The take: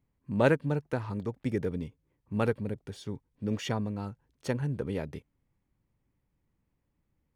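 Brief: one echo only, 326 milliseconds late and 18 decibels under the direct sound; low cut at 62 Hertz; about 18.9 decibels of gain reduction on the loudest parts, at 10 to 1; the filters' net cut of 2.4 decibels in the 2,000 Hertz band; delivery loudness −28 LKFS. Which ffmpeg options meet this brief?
ffmpeg -i in.wav -af "highpass=62,equalizer=frequency=2000:width_type=o:gain=-3.5,acompressor=threshold=-38dB:ratio=10,aecho=1:1:326:0.126,volume=16.5dB" out.wav

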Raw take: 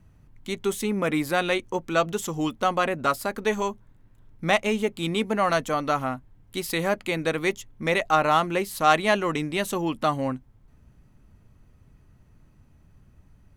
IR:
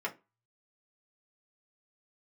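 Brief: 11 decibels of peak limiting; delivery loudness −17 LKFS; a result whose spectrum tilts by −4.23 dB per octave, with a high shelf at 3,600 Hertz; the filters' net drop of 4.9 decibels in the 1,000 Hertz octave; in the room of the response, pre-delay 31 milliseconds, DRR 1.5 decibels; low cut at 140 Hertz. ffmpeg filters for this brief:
-filter_complex "[0:a]highpass=140,equalizer=frequency=1000:width_type=o:gain=-7.5,highshelf=frequency=3600:gain=3.5,alimiter=limit=-16dB:level=0:latency=1,asplit=2[link_01][link_02];[1:a]atrim=start_sample=2205,adelay=31[link_03];[link_02][link_03]afir=irnorm=-1:irlink=0,volume=-6dB[link_04];[link_01][link_04]amix=inputs=2:normalize=0,volume=9.5dB"

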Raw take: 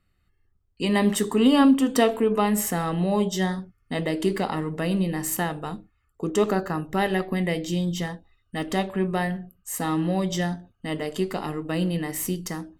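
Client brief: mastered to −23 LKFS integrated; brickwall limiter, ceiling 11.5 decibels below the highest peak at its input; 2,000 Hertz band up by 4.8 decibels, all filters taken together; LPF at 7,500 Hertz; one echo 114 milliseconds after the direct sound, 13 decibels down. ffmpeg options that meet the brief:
ffmpeg -i in.wav -af "lowpass=7500,equalizer=frequency=2000:width_type=o:gain=5.5,alimiter=limit=-17dB:level=0:latency=1,aecho=1:1:114:0.224,volume=4dB" out.wav

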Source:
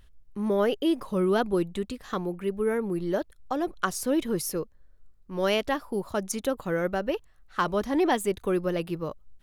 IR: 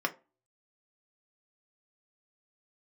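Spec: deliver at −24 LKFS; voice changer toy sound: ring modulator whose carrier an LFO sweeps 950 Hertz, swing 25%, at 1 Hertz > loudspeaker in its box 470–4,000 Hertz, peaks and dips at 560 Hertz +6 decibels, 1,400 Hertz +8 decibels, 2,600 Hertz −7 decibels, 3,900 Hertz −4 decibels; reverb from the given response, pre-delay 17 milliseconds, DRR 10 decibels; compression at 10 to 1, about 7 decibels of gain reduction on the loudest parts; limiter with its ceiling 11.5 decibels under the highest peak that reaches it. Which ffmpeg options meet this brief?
-filter_complex "[0:a]acompressor=threshold=-27dB:ratio=10,alimiter=level_in=1.5dB:limit=-24dB:level=0:latency=1,volume=-1.5dB,asplit=2[link_01][link_02];[1:a]atrim=start_sample=2205,adelay=17[link_03];[link_02][link_03]afir=irnorm=-1:irlink=0,volume=-17.5dB[link_04];[link_01][link_04]amix=inputs=2:normalize=0,aeval=exprs='val(0)*sin(2*PI*950*n/s+950*0.25/1*sin(2*PI*1*n/s))':channel_layout=same,highpass=470,equalizer=frequency=560:width_type=q:width=4:gain=6,equalizer=frequency=1400:width_type=q:width=4:gain=8,equalizer=frequency=2600:width_type=q:width=4:gain=-7,equalizer=frequency=3900:width_type=q:width=4:gain=-4,lowpass=frequency=4000:width=0.5412,lowpass=frequency=4000:width=1.3066,volume=10.5dB"

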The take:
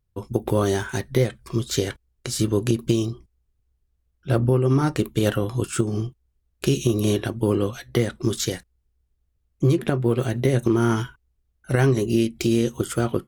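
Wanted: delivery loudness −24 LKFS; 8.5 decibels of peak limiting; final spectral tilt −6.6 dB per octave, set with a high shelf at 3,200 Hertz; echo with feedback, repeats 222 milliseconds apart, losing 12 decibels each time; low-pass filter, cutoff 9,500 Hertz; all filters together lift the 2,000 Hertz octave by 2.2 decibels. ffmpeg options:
ffmpeg -i in.wav -af "lowpass=9500,equalizer=frequency=2000:width_type=o:gain=5,highshelf=frequency=3200:gain=-6.5,alimiter=limit=-13dB:level=0:latency=1,aecho=1:1:222|444|666:0.251|0.0628|0.0157,volume=1.5dB" out.wav

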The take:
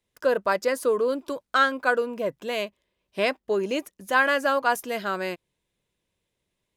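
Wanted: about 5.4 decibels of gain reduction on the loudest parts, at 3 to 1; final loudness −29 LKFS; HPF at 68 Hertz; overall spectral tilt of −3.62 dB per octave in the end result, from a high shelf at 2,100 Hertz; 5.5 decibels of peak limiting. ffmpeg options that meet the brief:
ffmpeg -i in.wav -af "highpass=68,highshelf=frequency=2100:gain=6,acompressor=threshold=-21dB:ratio=3,volume=-1dB,alimiter=limit=-17dB:level=0:latency=1" out.wav

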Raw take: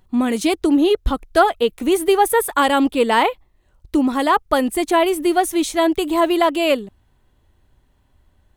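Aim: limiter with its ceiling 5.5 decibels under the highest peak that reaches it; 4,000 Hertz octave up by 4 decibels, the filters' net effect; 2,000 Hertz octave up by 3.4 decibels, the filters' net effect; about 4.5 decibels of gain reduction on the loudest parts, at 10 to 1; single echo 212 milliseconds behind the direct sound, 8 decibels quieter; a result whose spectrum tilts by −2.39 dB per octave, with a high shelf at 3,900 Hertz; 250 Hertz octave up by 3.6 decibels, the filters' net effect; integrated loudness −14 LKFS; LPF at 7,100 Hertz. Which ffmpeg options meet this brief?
ffmpeg -i in.wav -af "lowpass=7100,equalizer=frequency=250:width_type=o:gain=4.5,equalizer=frequency=2000:width_type=o:gain=4,highshelf=frequency=3900:gain=-7,equalizer=frequency=4000:width_type=o:gain=8,acompressor=threshold=-13dB:ratio=10,alimiter=limit=-10dB:level=0:latency=1,aecho=1:1:212:0.398,volume=5.5dB" out.wav

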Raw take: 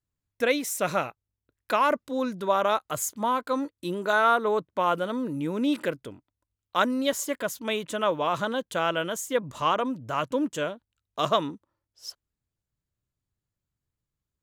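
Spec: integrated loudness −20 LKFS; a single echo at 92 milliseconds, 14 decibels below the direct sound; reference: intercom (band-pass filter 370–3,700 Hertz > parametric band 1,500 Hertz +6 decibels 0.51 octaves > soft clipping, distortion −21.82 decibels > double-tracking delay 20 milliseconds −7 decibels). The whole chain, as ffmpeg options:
ffmpeg -i in.wav -filter_complex "[0:a]highpass=370,lowpass=3700,equalizer=frequency=1500:width_type=o:width=0.51:gain=6,aecho=1:1:92:0.2,asoftclip=threshold=-9.5dB,asplit=2[link_01][link_02];[link_02]adelay=20,volume=-7dB[link_03];[link_01][link_03]amix=inputs=2:normalize=0,volume=6dB" out.wav

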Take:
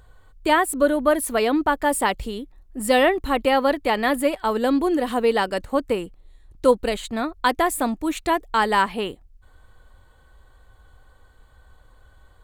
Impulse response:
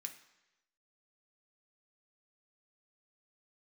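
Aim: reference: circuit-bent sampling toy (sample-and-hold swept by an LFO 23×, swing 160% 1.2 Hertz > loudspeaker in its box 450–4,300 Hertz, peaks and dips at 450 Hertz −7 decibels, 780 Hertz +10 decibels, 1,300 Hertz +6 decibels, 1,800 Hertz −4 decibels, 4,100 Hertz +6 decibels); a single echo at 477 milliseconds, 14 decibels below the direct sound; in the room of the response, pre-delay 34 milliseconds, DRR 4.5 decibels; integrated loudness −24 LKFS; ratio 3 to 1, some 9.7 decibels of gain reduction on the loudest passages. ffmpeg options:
-filter_complex "[0:a]acompressor=threshold=-26dB:ratio=3,aecho=1:1:477:0.2,asplit=2[link_01][link_02];[1:a]atrim=start_sample=2205,adelay=34[link_03];[link_02][link_03]afir=irnorm=-1:irlink=0,volume=-0.5dB[link_04];[link_01][link_04]amix=inputs=2:normalize=0,acrusher=samples=23:mix=1:aa=0.000001:lfo=1:lforange=36.8:lforate=1.2,highpass=450,equalizer=frequency=450:width_type=q:width=4:gain=-7,equalizer=frequency=780:width_type=q:width=4:gain=10,equalizer=frequency=1300:width_type=q:width=4:gain=6,equalizer=frequency=1800:width_type=q:width=4:gain=-4,equalizer=frequency=4100:width_type=q:width=4:gain=6,lowpass=frequency=4300:width=0.5412,lowpass=frequency=4300:width=1.3066,volume=4dB"

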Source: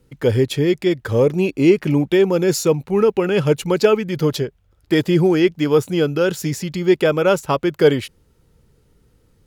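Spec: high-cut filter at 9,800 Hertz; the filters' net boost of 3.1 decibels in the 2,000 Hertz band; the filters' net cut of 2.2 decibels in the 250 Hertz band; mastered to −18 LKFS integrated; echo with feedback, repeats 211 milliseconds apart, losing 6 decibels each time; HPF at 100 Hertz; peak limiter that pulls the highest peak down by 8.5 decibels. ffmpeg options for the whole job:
ffmpeg -i in.wav -af "highpass=100,lowpass=9800,equalizer=frequency=250:width_type=o:gain=-3.5,equalizer=frequency=2000:width_type=o:gain=4,alimiter=limit=-9.5dB:level=0:latency=1,aecho=1:1:211|422|633|844|1055|1266:0.501|0.251|0.125|0.0626|0.0313|0.0157,volume=1.5dB" out.wav

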